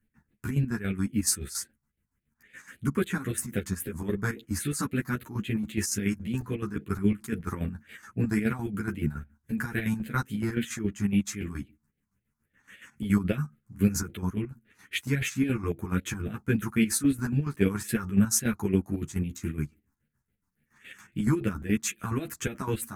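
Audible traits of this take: phasing stages 4, 3.7 Hz, lowest notch 490–1000 Hz; chopped level 7.1 Hz, depth 65%, duty 50%; a shimmering, thickened sound

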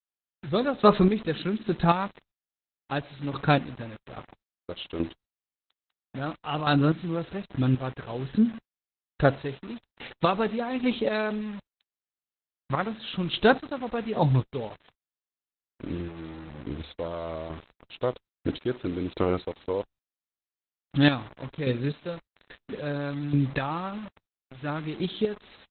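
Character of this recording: chopped level 1.2 Hz, depth 65%, duty 30%; a quantiser's noise floor 8-bit, dither none; Opus

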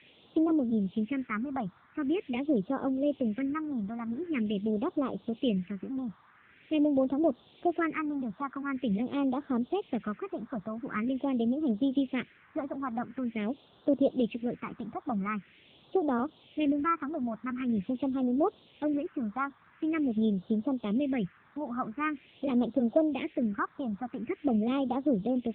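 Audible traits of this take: a quantiser's noise floor 8-bit, dither triangular; phasing stages 4, 0.45 Hz, lowest notch 450–2300 Hz; AMR-NB

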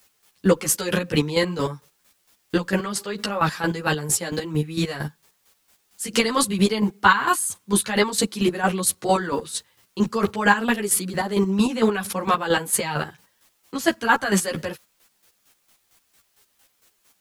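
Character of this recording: a quantiser's noise floor 10-bit, dither triangular; chopped level 4.4 Hz, depth 65%, duty 30%; a shimmering, thickened sound

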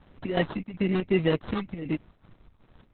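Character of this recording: phasing stages 4, 1.1 Hz, lowest notch 600–3300 Hz; aliases and images of a low sample rate 2.4 kHz, jitter 0%; chopped level 2.7 Hz, depth 60%, duty 70%; Opus

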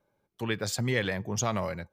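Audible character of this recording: noise floor -81 dBFS; spectral tilt -4.0 dB/octave

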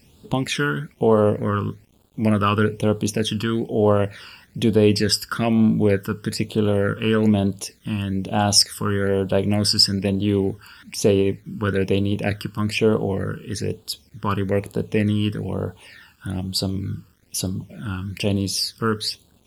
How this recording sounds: a quantiser's noise floor 10-bit, dither none; phasing stages 12, 1.1 Hz, lowest notch 650–2000 Hz; Vorbis

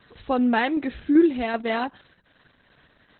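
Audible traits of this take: tremolo saw down 2.6 Hz, depth 40%; Opus

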